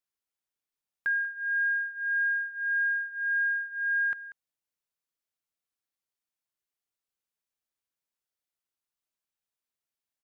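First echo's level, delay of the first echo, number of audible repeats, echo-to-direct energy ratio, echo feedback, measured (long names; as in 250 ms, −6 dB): −16.0 dB, 189 ms, 1, −16.0 dB, repeats not evenly spaced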